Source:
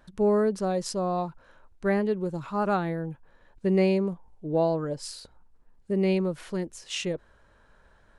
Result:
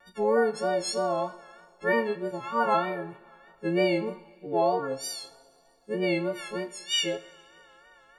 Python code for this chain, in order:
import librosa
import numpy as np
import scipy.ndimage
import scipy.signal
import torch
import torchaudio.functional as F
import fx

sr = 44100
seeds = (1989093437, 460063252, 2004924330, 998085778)

y = fx.freq_snap(x, sr, grid_st=4)
y = fx.bass_treble(y, sr, bass_db=-14, treble_db=-13)
y = fx.vibrato(y, sr, rate_hz=3.2, depth_cents=91.0)
y = fx.doubler(y, sr, ms=26.0, db=-13)
y = fx.rev_double_slope(y, sr, seeds[0], early_s=0.52, late_s=2.8, knee_db=-18, drr_db=10.5)
y = y * 10.0 ** (1.5 / 20.0)